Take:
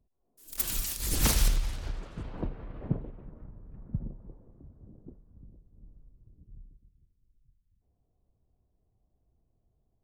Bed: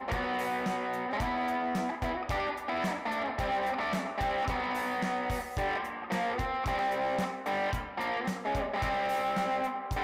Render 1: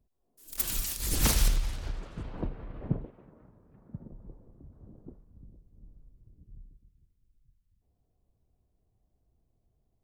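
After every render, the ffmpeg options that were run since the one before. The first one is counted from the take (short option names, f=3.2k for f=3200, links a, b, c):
-filter_complex "[0:a]asettb=1/sr,asplit=3[a][b][c];[a]atrim=end=3.064[d];[b]atrim=start=3.06:end=4.12,asetpts=PTS-STARTPTS,afade=t=in:d=0.004:c=qsin,afade=t=out:st=1.056:d=0.004:c=qsin,highpass=f=310:p=1[e];[c]atrim=start=4.116[f];[d][e]acrossfade=d=0.004:c1=hsin:c2=qsin[g];[g][f]acrossfade=d=0.004:c1=qsin:c2=hsin,asettb=1/sr,asplit=3[h][i][j];[h]atrim=end=4.724[k];[i]atrim=start=4.72:end=5.25,asetpts=PTS-STARTPTS,afade=t=in:d=0.004:c=qsin,afade=t=out:st=0.526:d=0.004:c=qsin,equalizer=f=1.2k:t=o:w=2.3:g=6[l];[j]atrim=start=5.246[m];[k][l]acrossfade=d=0.004:c1=hsin:c2=qsin[n];[n][m]acrossfade=d=0.004:c1=qsin:c2=hsin"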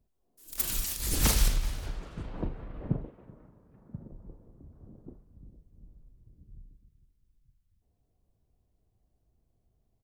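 -filter_complex "[0:a]asplit=2[a][b];[b]adelay=39,volume=-11dB[c];[a][c]amix=inputs=2:normalize=0,aecho=1:1:381:0.0708"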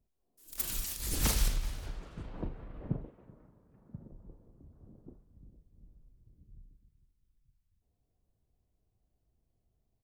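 -af "volume=-4.5dB"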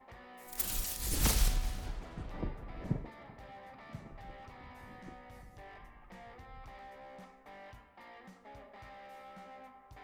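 -filter_complex "[1:a]volume=-21dB[a];[0:a][a]amix=inputs=2:normalize=0"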